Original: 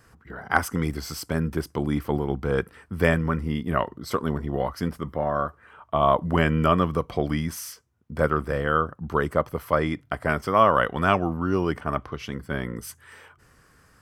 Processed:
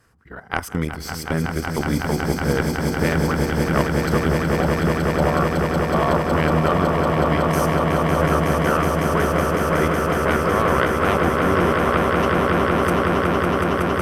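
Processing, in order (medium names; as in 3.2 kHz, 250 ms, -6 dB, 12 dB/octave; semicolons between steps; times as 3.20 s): Chebyshev shaper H 2 -6 dB, 3 -29 dB, 7 -40 dB, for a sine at -2 dBFS; level held to a coarse grid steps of 13 dB; echo with a slow build-up 185 ms, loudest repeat 8, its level -5.5 dB; trim +5 dB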